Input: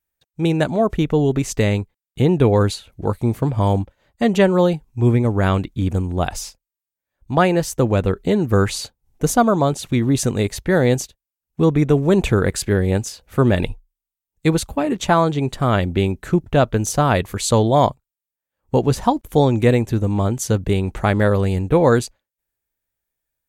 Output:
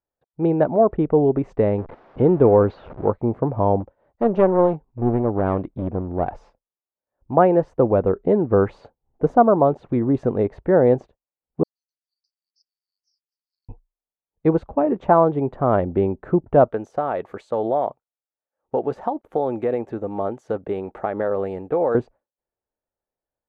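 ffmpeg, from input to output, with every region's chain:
-filter_complex "[0:a]asettb=1/sr,asplit=3[s0][s1][s2];[s0]atrim=end=1.784[s3];[s1]atrim=start=1.78:end=3.11,asetpts=PTS-STARTPTS,afade=t=in:d=0.004:c=qsin,afade=t=out:st=1.326:d=0.004:c=qsin,aeval=exprs='val(0)+0.5*0.0422*sgn(val(0))':c=same,lowpass=f=5400:w=0.5412,lowpass=f=5400:w=1.3066[s4];[s2]atrim=start=3.106[s5];[s3][s4]acrossfade=d=0.004:c1=hsin:c2=qsin[s6];[s6][s5]acrossfade=d=0.004:c1=qsin:c2=hsin,asettb=1/sr,asplit=3[s7][s8][s9];[s7]atrim=end=3.804[s10];[s8]atrim=start=3.8:end=6.32,asetpts=PTS-STARTPTS,afade=t=in:d=0.004:c=qsin,afade=t=out:st=2.516:d=0.004:c=qsin,highshelf=f=7000:t=q:w=3:g=-7,aeval=exprs='clip(val(0),-1,0.0668)':c=same[s11];[s9]atrim=start=6.316[s12];[s10][s11]acrossfade=d=0.004:c1=hsin:c2=qsin[s13];[s13][s12]acrossfade=d=0.004:c1=qsin:c2=hsin,asettb=1/sr,asplit=3[s14][s15][s16];[s14]atrim=end=11.634[s17];[s15]atrim=start=11.63:end=13.69,asetpts=PTS-STARTPTS,afade=t=in:d=0.004:c=qsin,afade=t=out:st=2.056:d=0.004:c=qsin,asuperpass=centerf=4800:order=12:qfactor=3.2,afreqshift=410[s18];[s16]atrim=start=13.686[s19];[s17][s18]acrossfade=d=0.004:c1=hsin:c2=qsin[s20];[s20][s19]acrossfade=d=0.004:c1=qsin:c2=hsin,asettb=1/sr,asplit=3[s21][s22][s23];[s21]atrim=end=16.684[s24];[s22]atrim=start=16.68:end=21.95,asetpts=PTS-STARTPTS,afade=t=in:d=0.004:c=qsin,afade=t=out:st=5.266:d=0.004:c=qsin,aemphasis=mode=production:type=riaa,acompressor=threshold=0.141:ratio=6:attack=3.2:release=140:knee=1:detection=peak,bandreject=f=1000:w=8.7[s25];[s23]atrim=start=21.946[s26];[s24][s25]acrossfade=d=0.004:c1=hsin:c2=qsin[s27];[s27][s26]acrossfade=d=0.004:c1=qsin:c2=hsin,lowpass=1200,equalizer=f=600:w=0.41:g=13,volume=0.335"

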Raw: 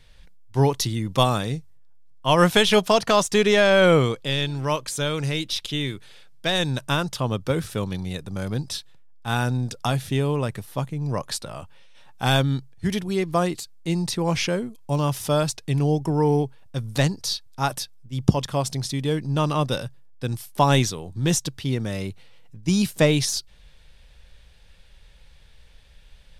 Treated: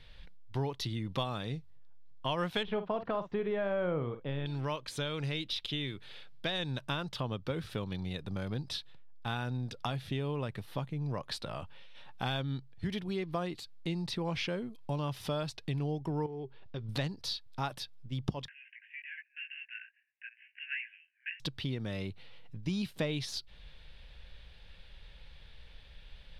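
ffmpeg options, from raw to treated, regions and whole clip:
-filter_complex "[0:a]asettb=1/sr,asplit=3[s0][s1][s2];[s0]atrim=end=2.634[s3];[s1]atrim=start=2.63:end=4.46,asetpts=PTS-STARTPTS,afade=t=in:d=0.004:c=qsin,afade=t=out:st=1.826:d=0.004:c=qsin,lowpass=1300,asplit=2[s4][s5];[s5]adelay=50,volume=0.266[s6];[s4][s6]amix=inputs=2:normalize=0,atrim=end_sample=80703[s7];[s2]atrim=start=4.456[s8];[s3][s7]acrossfade=d=0.004:c1=hsin:c2=qsin[s9];[s9][s8]acrossfade=d=0.004:c1=qsin:c2=hsin,asettb=1/sr,asplit=3[s10][s11][s12];[s10]atrim=end=16.264[s13];[s11]atrim=start=16.26:end=16.89,asetpts=PTS-STARTPTS,afade=t=in:d=0.004:c=qsin,afade=t=out:st=0.626:d=0.004:c=qsin,lowpass=f=5300:w=0.5412,lowpass=f=5300:w=1.3066,equalizer=f=390:w=6.1:g=12,acompressor=threshold=0.0112:ratio=2:attack=3.2:release=140:knee=1:detection=peak[s14];[s12]atrim=start=16.886[s15];[s13][s14]acrossfade=d=0.004:c1=hsin:c2=qsin[s16];[s16][s15]acrossfade=d=0.004:c1=qsin:c2=hsin,asettb=1/sr,asplit=3[s17][s18][s19];[s17]atrim=end=18.484[s20];[s18]atrim=start=18.48:end=21.4,asetpts=PTS-STARTPTS,afade=t=in:d=0.004:c=qsin,afade=t=out:st=2.916:d=0.004:c=qsin,flanger=delay=16.5:depth=2.4:speed=1,acompressor=mode=upward:threshold=0.0398:ratio=2.5:attack=3.2:release=140:knee=2.83:detection=peak,asuperpass=centerf=2100:order=20:qfactor=1.6[s21];[s19]atrim=start=21.396[s22];[s20][s21]acrossfade=d=0.004:c1=hsin:c2=qsin[s23];[s23][s22]acrossfade=d=0.004:c1=qsin:c2=hsin,highshelf=f=5200:t=q:w=1.5:g=-10,acompressor=threshold=0.02:ratio=3,volume=0.841"

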